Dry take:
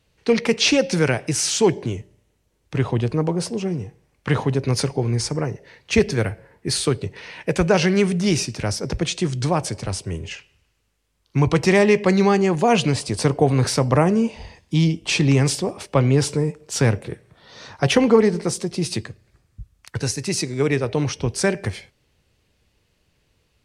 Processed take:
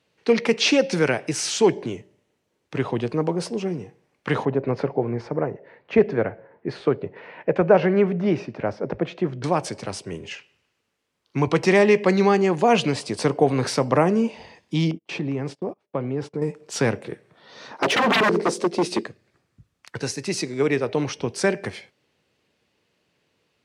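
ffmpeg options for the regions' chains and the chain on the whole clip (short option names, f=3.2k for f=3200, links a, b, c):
-filter_complex "[0:a]asettb=1/sr,asplit=3[a][b][c];[a]atrim=end=4.454[d];[b]atrim=start=4.45:end=9.44,asetpts=PTS-STARTPTS,afade=t=in:d=0.004:c=qsin,afade=t=out:st=4.986:d=0.004:c=qsin,lowpass=1.7k,equalizer=f=610:t=o:w=0.77:g=4.5[e];[c]atrim=start=9.436[f];[d][e]acrossfade=d=0.004:c1=hsin:c2=qsin[g];[g][f]acrossfade=d=0.004:c1=qsin:c2=hsin,asettb=1/sr,asplit=3[h][i][j];[h]atrim=end=14.914[k];[i]atrim=start=14.91:end=16.42,asetpts=PTS-STARTPTS,afade=t=in:d=0.004:c=qsin,afade=t=out:st=1.506:d=0.004:c=qsin,lowpass=f=1k:p=1,acompressor=threshold=-23dB:ratio=2:attack=3.2:release=140:knee=1:detection=peak,agate=range=-30dB:threshold=-34dB:ratio=16:release=100:detection=peak[l];[j]atrim=start=16.416[m];[k][l]acrossfade=d=0.004:c1=hsin:c2=qsin[n];[n][m]acrossfade=d=0.004:c1=qsin:c2=hsin,asettb=1/sr,asplit=3[o][p][q];[o]atrim=end=17.714[r];[p]atrim=start=17.71:end=19.07,asetpts=PTS-STARTPTS,afade=t=in:d=0.004:c=qsin,afade=t=out:st=1.356:d=0.004:c=qsin,highpass=f=180:w=0.5412,highpass=f=180:w=1.3066,equalizer=f=390:t=o:w=2.3:g=9.5,aeval=exprs='0.237*(abs(mod(val(0)/0.237+3,4)-2)-1)':c=same[s];[q]atrim=start=19.066[t];[r][s]acrossfade=d=0.004:c1=hsin:c2=qsin[u];[u][t]acrossfade=d=0.004:c1=qsin:c2=hsin,highpass=200,highshelf=f=6.7k:g=-10.5"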